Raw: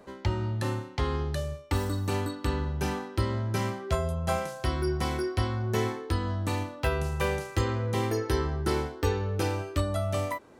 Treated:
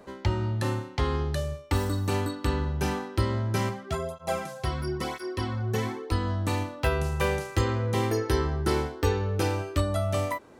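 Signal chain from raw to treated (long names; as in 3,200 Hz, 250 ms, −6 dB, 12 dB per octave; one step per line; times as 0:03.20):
0:03.69–0:06.12: through-zero flanger with one copy inverted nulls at 1 Hz, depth 3.6 ms
level +2 dB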